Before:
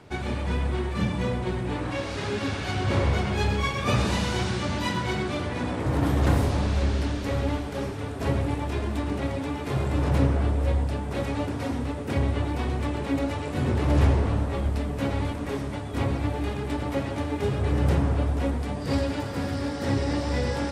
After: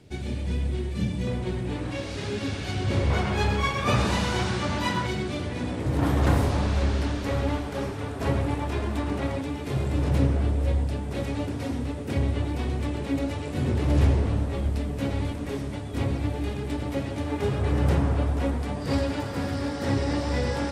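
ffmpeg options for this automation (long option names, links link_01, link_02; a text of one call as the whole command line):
ffmpeg -i in.wav -af "asetnsamples=nb_out_samples=441:pad=0,asendcmd='1.27 equalizer g -7;3.1 equalizer g 2.5;5.07 equalizer g -6.5;5.99 equalizer g 1.5;9.41 equalizer g -5.5;17.26 equalizer g 0.5',equalizer=frequency=1100:width_type=o:width=1.7:gain=-15" out.wav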